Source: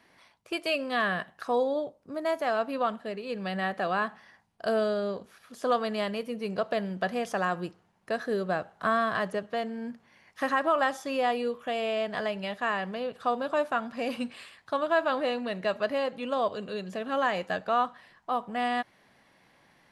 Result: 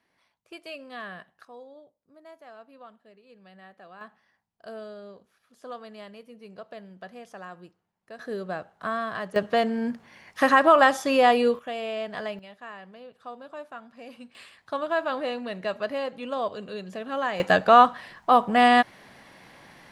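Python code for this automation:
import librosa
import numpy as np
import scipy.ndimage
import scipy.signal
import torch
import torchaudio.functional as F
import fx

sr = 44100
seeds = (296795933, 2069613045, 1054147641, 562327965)

y = fx.gain(x, sr, db=fx.steps((0.0, -11.0), (1.45, -19.5), (4.01, -13.0), (8.19, -3.5), (9.36, 8.5), (11.59, -2.0), (12.39, -12.5), (14.35, -1.0), (17.4, 11.5)))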